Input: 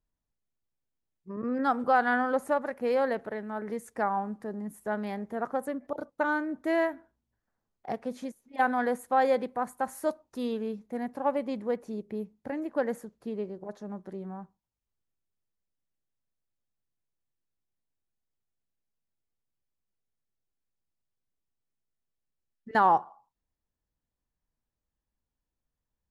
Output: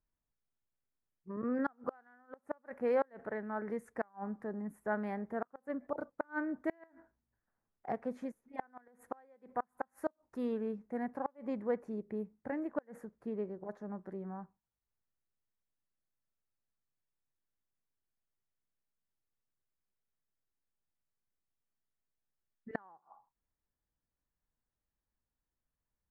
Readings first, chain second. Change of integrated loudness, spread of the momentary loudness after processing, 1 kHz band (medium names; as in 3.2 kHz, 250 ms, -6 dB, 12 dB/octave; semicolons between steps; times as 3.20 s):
-9.5 dB, 12 LU, -14.5 dB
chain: resonant high shelf 2.5 kHz -10.5 dB, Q 1.5; inverted gate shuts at -18 dBFS, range -34 dB; trim -4 dB